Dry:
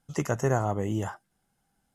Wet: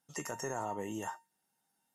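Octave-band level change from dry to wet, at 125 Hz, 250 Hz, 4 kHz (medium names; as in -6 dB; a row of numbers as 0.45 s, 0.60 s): -20.5 dB, -11.5 dB, -3.0 dB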